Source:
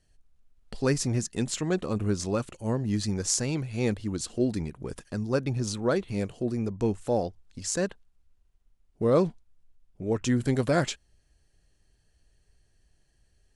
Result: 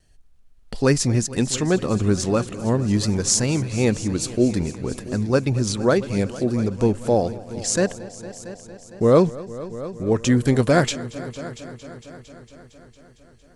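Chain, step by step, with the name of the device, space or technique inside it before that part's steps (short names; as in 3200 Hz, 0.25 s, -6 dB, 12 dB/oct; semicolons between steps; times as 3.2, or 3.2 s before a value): multi-head tape echo (multi-head echo 0.228 s, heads all three, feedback 56%, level -20 dB; wow and flutter 24 cents); gain +7.5 dB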